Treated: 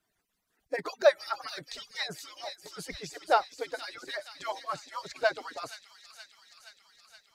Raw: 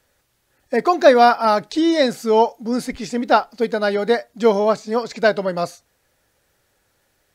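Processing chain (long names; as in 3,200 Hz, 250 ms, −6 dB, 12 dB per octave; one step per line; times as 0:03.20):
harmonic-percussive split with one part muted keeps percussive
on a send: delay with a high-pass on its return 472 ms, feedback 70%, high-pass 2,900 Hz, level −7 dB
on the sum: level −9 dB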